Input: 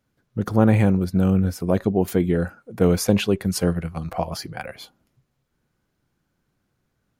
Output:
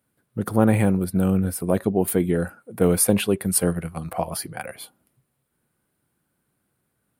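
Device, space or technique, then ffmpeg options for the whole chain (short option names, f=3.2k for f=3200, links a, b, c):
budget condenser microphone: -af "highpass=f=120:p=1,highshelf=f=7.7k:t=q:w=3:g=7"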